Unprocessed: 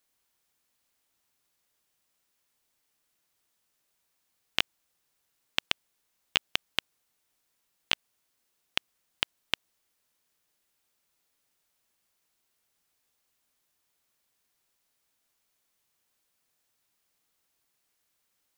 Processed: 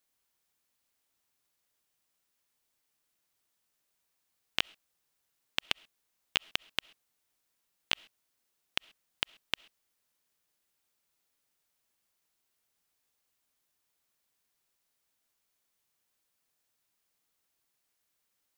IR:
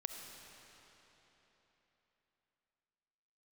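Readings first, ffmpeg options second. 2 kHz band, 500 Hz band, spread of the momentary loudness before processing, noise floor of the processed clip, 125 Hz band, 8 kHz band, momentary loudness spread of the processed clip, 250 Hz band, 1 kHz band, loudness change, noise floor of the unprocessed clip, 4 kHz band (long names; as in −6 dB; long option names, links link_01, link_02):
−3.5 dB, −3.5 dB, 4 LU, −80 dBFS, −3.5 dB, −3.5 dB, 4 LU, −3.5 dB, −3.5 dB, −3.5 dB, −77 dBFS, −3.5 dB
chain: -filter_complex "[0:a]asplit=2[link_01][link_02];[1:a]atrim=start_sample=2205,atrim=end_sample=6174,highshelf=frequency=9300:gain=7[link_03];[link_02][link_03]afir=irnorm=-1:irlink=0,volume=-13dB[link_04];[link_01][link_04]amix=inputs=2:normalize=0,volume=-5dB"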